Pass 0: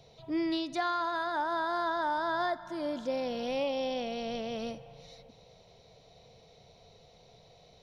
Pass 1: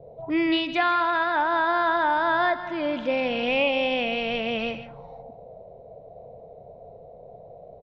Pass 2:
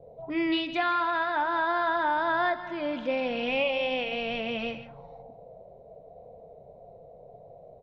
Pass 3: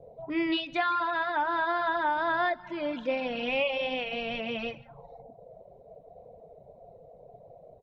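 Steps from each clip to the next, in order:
delay 161 ms -13.5 dB; touch-sensitive low-pass 480–2600 Hz up, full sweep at -37.5 dBFS; trim +7 dB
flange 0.32 Hz, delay 3.8 ms, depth 4.4 ms, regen -67%
reverb removal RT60 0.71 s

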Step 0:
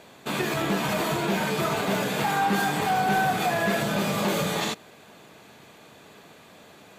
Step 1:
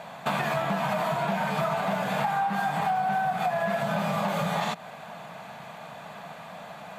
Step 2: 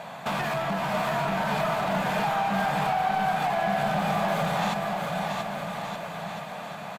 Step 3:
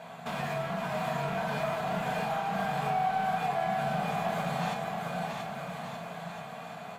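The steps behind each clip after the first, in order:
FFT filter 100 Hz 0 dB, 170 Hz +11 dB, 360 Hz -9 dB, 680 Hz +14 dB, 5.9 kHz -1 dB; compression 10:1, threshold -24 dBFS, peak gain reduction 16.5 dB
saturation -26 dBFS, distortion -13 dB; bouncing-ball echo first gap 680 ms, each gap 0.8×, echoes 5; trim +2.5 dB
reverberation RT60 0.55 s, pre-delay 3 ms, DRR 0 dB; trim -9 dB

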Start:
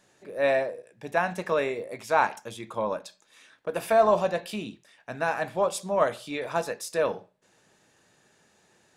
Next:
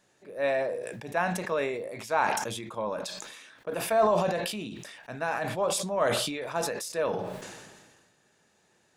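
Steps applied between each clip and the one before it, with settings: decay stretcher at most 37 dB/s; trim -4 dB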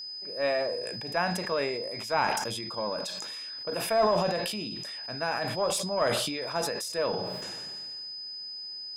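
single-diode clipper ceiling -14.5 dBFS; whistle 5 kHz -37 dBFS

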